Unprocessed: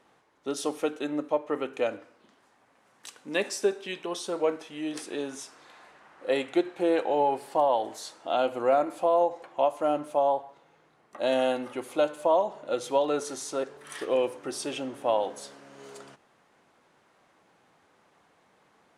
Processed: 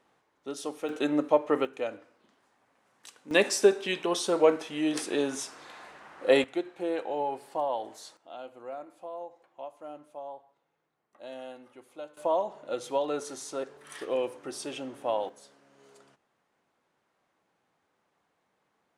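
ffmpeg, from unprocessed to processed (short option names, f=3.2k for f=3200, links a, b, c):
-af "asetnsamples=n=441:p=0,asendcmd='0.89 volume volume 4dB;1.65 volume volume -5dB;3.31 volume volume 5dB;6.44 volume volume -6.5dB;8.17 volume volume -17dB;12.17 volume volume -4dB;15.29 volume volume -11.5dB',volume=-5.5dB"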